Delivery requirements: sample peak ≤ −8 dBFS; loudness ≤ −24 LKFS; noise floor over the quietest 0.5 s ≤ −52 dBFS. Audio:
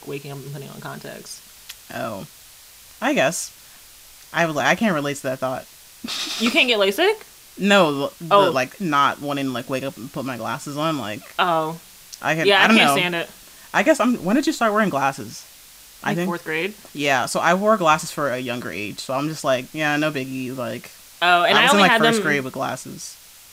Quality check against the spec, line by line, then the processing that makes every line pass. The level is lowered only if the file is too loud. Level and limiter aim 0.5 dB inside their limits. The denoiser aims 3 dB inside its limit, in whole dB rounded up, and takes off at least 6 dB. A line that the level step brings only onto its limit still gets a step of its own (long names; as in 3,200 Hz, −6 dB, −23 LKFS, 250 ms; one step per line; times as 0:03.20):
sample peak −3.0 dBFS: out of spec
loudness −20.0 LKFS: out of spec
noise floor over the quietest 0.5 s −46 dBFS: out of spec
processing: broadband denoise 6 dB, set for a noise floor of −46 dBFS
level −4.5 dB
brickwall limiter −8.5 dBFS